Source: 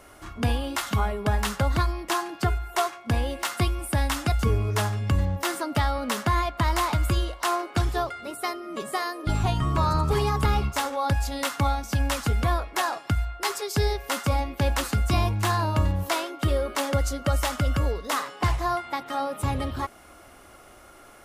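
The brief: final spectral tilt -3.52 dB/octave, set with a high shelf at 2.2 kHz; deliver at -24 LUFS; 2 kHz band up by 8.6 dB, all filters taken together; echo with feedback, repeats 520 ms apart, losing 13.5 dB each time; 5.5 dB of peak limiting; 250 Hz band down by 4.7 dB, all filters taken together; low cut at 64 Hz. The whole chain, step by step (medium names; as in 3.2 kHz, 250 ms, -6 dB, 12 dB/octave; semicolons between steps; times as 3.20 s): high-pass 64 Hz; peaking EQ 250 Hz -7 dB; peaking EQ 2 kHz +6 dB; treble shelf 2.2 kHz +9 dB; peak limiter -11.5 dBFS; feedback delay 520 ms, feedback 21%, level -13.5 dB; trim +0.5 dB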